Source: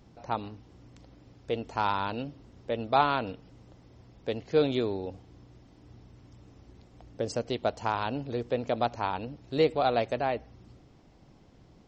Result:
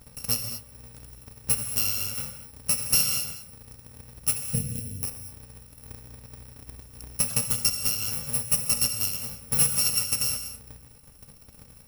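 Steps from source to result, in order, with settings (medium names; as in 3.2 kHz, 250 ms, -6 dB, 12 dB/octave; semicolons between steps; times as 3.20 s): bit-reversed sample order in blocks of 128 samples; 4.51–5.03 s: FFT filter 400 Hz 0 dB, 870 Hz -27 dB, 1.9 kHz -14 dB; in parallel at 0 dB: compression, threshold -38 dBFS, peak gain reduction 19 dB; on the sum: transient shaper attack +10 dB, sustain -4 dB; gated-style reverb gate 260 ms flat, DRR 7.5 dB; saturation -12.5 dBFS, distortion -13 dB; trim -2 dB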